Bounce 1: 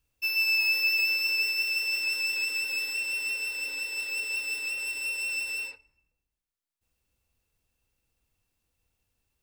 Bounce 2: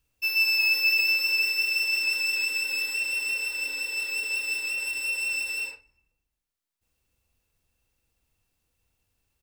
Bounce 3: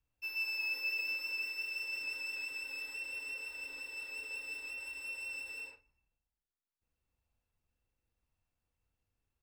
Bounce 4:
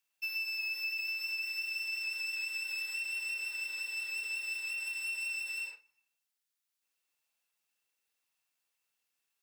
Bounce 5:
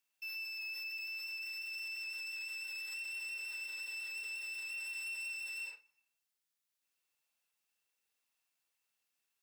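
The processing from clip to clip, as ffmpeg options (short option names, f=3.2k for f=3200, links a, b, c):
-filter_complex "[0:a]asplit=2[a][b];[b]adelay=43,volume=-10dB[c];[a][c]amix=inputs=2:normalize=0,volume=2dB"
-filter_complex "[0:a]highshelf=f=2.6k:g=-11.5,acrossover=split=390|680|1900[a][b][c][d];[a]acrusher=samples=38:mix=1:aa=0.000001:lfo=1:lforange=38:lforate=0.85[e];[e][b][c][d]amix=inputs=4:normalize=0,volume=-7.5dB"
-af "highpass=240,tiltshelf=f=970:g=-10,acompressor=threshold=-34dB:ratio=6"
-af "alimiter=level_in=11.5dB:limit=-24dB:level=0:latency=1:release=33,volume=-11.5dB,volume=-1.5dB"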